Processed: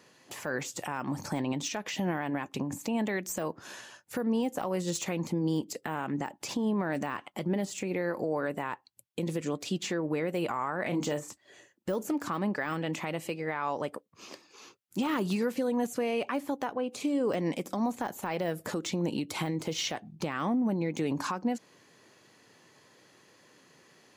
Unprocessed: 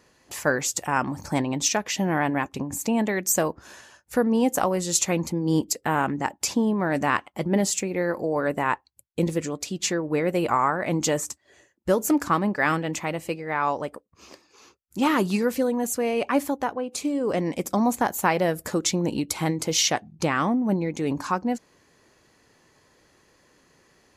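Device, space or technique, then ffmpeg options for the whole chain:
broadcast voice chain: -filter_complex "[0:a]asettb=1/sr,asplit=3[a][b][c];[a]atrim=end=10.824[d];[b]atrim=start=10.82:end=11.3,asetpts=PTS-STARTPTS,afade=t=in:d=0.004:c=qsin,afade=t=out:st=0.476:d=0.004:c=qsin,asplit=2[e][f];[f]adelay=34,volume=-7.5dB[g];[e][g]amix=inputs=2:normalize=0,atrim=end_sample=21168[h];[c]atrim=start=11.296[i];[d][h]acrossfade=d=0.004:c1=hsin:c2=qsin[j];[j][i]acrossfade=d=0.004:c1=qsin:c2=hsin,highpass=f=110:w=0.5412,highpass=f=110:w=1.3066,deesser=0.85,acompressor=threshold=-24dB:ratio=5,equalizer=f=3.2k:t=o:w=0.77:g=3.5,alimiter=limit=-21dB:level=0:latency=1:release=111"

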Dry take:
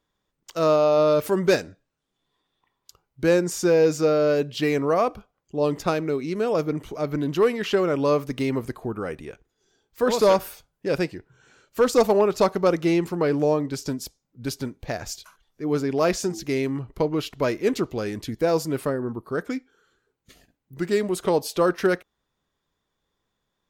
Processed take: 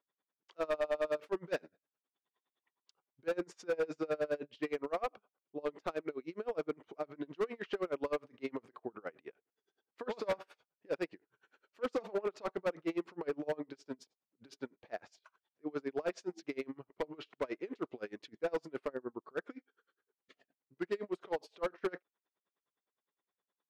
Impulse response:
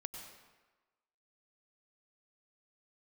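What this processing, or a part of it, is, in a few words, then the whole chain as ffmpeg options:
helicopter radio: -af "highpass=330,lowpass=2.9k,aeval=exprs='val(0)*pow(10,-31*(0.5-0.5*cos(2*PI*9.7*n/s))/20)':c=same,asoftclip=type=hard:threshold=-22.5dB,volume=-5.5dB"

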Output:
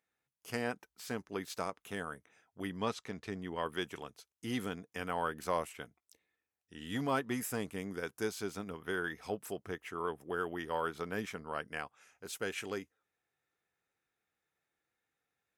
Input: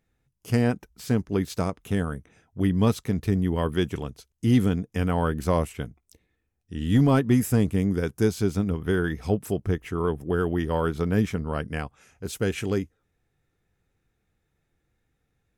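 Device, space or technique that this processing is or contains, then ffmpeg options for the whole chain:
filter by subtraction: -filter_complex "[0:a]asettb=1/sr,asplit=3[a][b][c];[a]atrim=end=2.774[d];[b]atrim=start=2.77:end=3.66,asetpts=PTS-STARTPTS,afade=t=in:d=0.004:c=qsin,afade=t=out:st=0.886:d=0.004:c=qsin,lowpass=7k[e];[c]atrim=start=3.656[f];[d][e]acrossfade=d=0.004:c1=hsin:c2=qsin[g];[g][f]acrossfade=d=0.004:c1=qsin:c2=hsin,asplit=2[h][i];[i]lowpass=1.1k,volume=-1[j];[h][j]amix=inputs=2:normalize=0,volume=-7dB"

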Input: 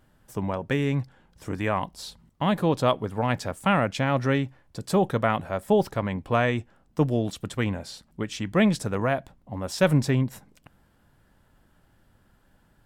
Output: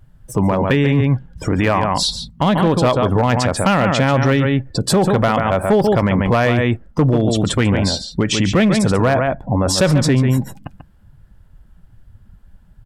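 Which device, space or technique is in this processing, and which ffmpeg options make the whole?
loud club master: -filter_complex "[0:a]afftdn=nr=22:nf=-47,asplit=2[a][b];[b]adelay=139.9,volume=-9dB,highshelf=f=4k:g=-3.15[c];[a][c]amix=inputs=2:normalize=0,acompressor=threshold=-24dB:ratio=2.5,asoftclip=type=hard:threshold=-20dB,alimiter=level_in=29dB:limit=-1dB:release=50:level=0:latency=1,volume=-7dB"

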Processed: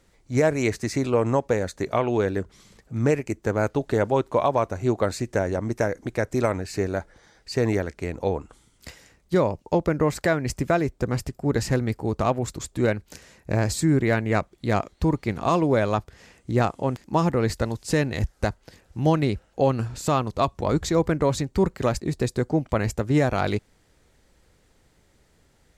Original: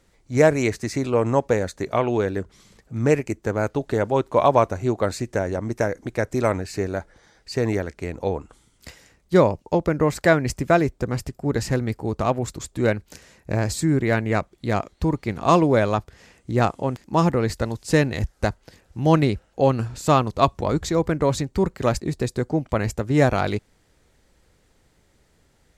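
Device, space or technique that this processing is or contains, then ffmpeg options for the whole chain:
clipper into limiter: -af "asoftclip=type=hard:threshold=-4dB,alimiter=limit=-10dB:level=0:latency=1:release=283"

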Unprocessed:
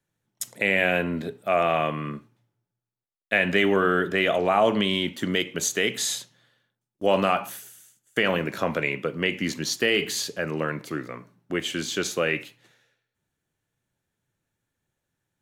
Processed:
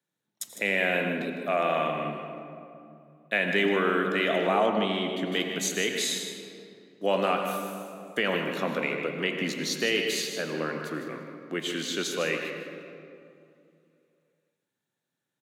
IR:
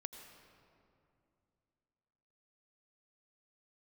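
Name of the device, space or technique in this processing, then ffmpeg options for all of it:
PA in a hall: -filter_complex "[0:a]highpass=f=160:w=0.5412,highpass=f=160:w=1.3066,equalizer=f=3.8k:t=o:w=0.23:g=6,aecho=1:1:154:0.316[a];[1:a]atrim=start_sample=2205[b];[a][b]afir=irnorm=-1:irlink=0,asettb=1/sr,asplit=3[c][d][e];[c]atrim=end=4.664[f];[d]atrim=start=4.66:end=5.32,asetpts=PTS-STARTPTS,afade=t=in:d=0.004:c=qsin,afade=t=out:st=0.656:d=0.004:c=qsin,highshelf=f=4.1k:g=-11[g];[e]atrim=start=5.316[h];[f][g]acrossfade=d=0.004:c1=hsin:c2=qsin[i];[i][h]acrossfade=d=0.004:c1=qsin:c2=hsin"

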